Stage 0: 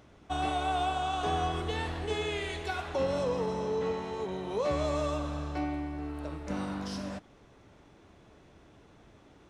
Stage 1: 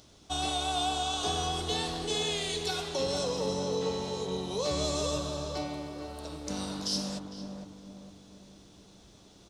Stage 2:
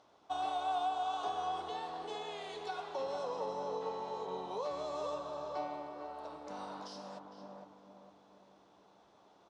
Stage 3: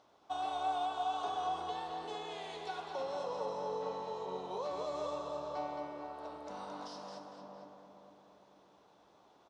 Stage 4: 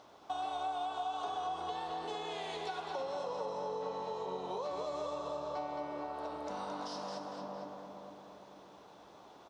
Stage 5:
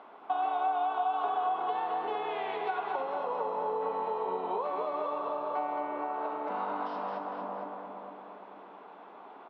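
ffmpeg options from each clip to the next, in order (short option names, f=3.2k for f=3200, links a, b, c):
-filter_complex "[0:a]highshelf=f=3k:t=q:w=1.5:g=13,asplit=2[a][b];[b]adelay=455,lowpass=f=1k:p=1,volume=-4dB,asplit=2[c][d];[d]adelay=455,lowpass=f=1k:p=1,volume=0.49,asplit=2[e][f];[f]adelay=455,lowpass=f=1k:p=1,volume=0.49,asplit=2[g][h];[h]adelay=455,lowpass=f=1k:p=1,volume=0.49,asplit=2[i][j];[j]adelay=455,lowpass=f=1k:p=1,volume=0.49,asplit=2[k][l];[l]adelay=455,lowpass=f=1k:p=1,volume=0.49[m];[a][c][e][g][i][k][m]amix=inputs=7:normalize=0,volume=-2dB"
-af "alimiter=limit=-23dB:level=0:latency=1:release=491,bandpass=f=900:t=q:w=1.7:csg=0,volume=2.5dB"
-af "aecho=1:1:218:0.501,volume=-1dB"
-af "acompressor=threshold=-47dB:ratio=3,volume=8.5dB"
-af "highpass=f=240:w=0.5412,highpass=f=240:w=1.3066,equalizer=f=320:t=q:w=4:g=-7,equalizer=f=550:t=q:w=4:g=-7,equalizer=f=1.8k:t=q:w=4:g=-3,lowpass=f=2.4k:w=0.5412,lowpass=f=2.4k:w=1.3066,volume=9dB"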